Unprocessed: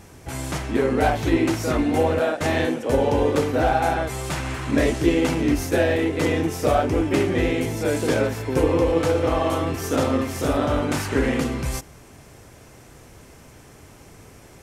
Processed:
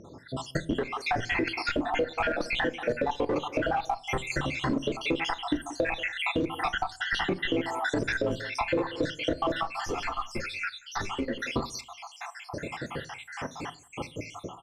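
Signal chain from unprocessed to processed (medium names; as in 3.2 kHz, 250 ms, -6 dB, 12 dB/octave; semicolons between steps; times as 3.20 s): random holes in the spectrogram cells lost 75%; high-pass 230 Hz 6 dB/octave; level rider gain up to 16 dB; in parallel at -11 dB: Schmitt trigger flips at -15 dBFS; on the sum: speakerphone echo 180 ms, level -25 dB; peak limiter -11.5 dBFS, peak gain reduction 10.5 dB; compression 4:1, threshold -29 dBFS, peak gain reduction 11.5 dB; low-pass 3.9 kHz 12 dB/octave; on a send at -13 dB: reverberation RT60 0.30 s, pre-delay 4 ms; 9.63–11.38 s: on the sum: three-phase chorus; trim +2.5 dB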